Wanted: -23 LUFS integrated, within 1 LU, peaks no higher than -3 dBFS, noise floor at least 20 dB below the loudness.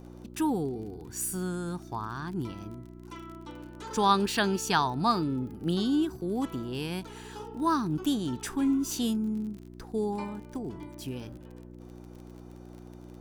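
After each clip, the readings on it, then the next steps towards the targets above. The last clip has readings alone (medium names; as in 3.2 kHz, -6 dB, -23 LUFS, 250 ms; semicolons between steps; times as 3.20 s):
tick rate 34 per s; hum 60 Hz; highest harmonic 360 Hz; hum level -47 dBFS; loudness -30.5 LUFS; peak level -11.0 dBFS; loudness target -23.0 LUFS
-> de-click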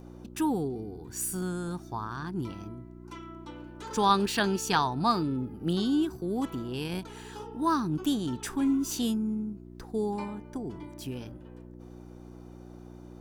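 tick rate 1.1 per s; hum 60 Hz; highest harmonic 360 Hz; hum level -47 dBFS
-> de-hum 60 Hz, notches 6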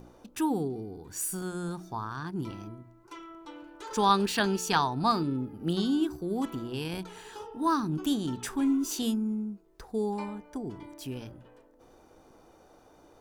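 hum not found; loudness -30.5 LUFS; peak level -11.0 dBFS; loudness target -23.0 LUFS
-> trim +7.5 dB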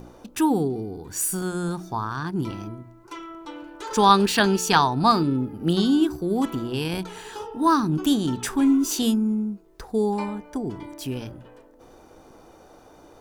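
loudness -23.0 LUFS; peak level -3.5 dBFS; noise floor -51 dBFS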